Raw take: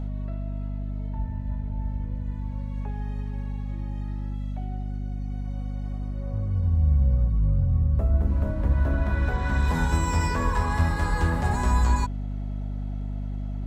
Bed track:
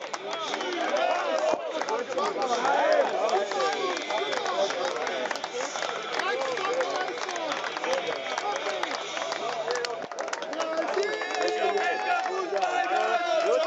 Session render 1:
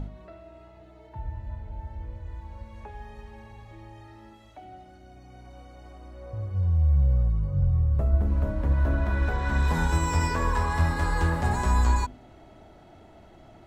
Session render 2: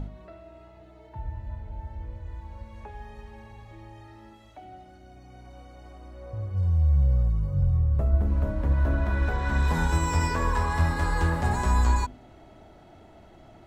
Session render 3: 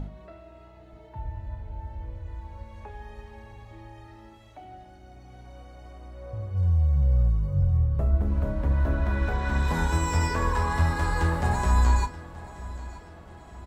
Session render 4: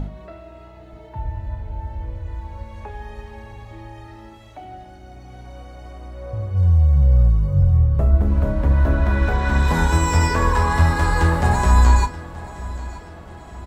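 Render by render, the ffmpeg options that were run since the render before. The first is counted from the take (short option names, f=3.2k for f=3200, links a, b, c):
-af "bandreject=f=50:t=h:w=4,bandreject=f=100:t=h:w=4,bandreject=f=150:t=h:w=4,bandreject=f=200:t=h:w=4,bandreject=f=250:t=h:w=4"
-filter_complex "[0:a]asettb=1/sr,asplit=3[a][b][c];[a]atrim=end=6.574[d];[b]atrim=start=6.57:end=7.78,asetpts=PTS-STARTPTS,afade=t=in:d=0.004:c=qsin,afade=t=out:st=1.206:d=0.004:c=qsin,highshelf=f=6.6k:g=10.5[e];[c]atrim=start=7.776[f];[d][e]acrossfade=d=0.004:c1=hsin:c2=qsin[g];[g][f]acrossfade=d=0.004:c1=qsin:c2=hsin"
-filter_complex "[0:a]asplit=2[a][b];[b]adelay=34,volume=-13dB[c];[a][c]amix=inputs=2:normalize=0,aecho=1:1:929|1858|2787|3716:0.126|0.0629|0.0315|0.0157"
-af "volume=7.5dB"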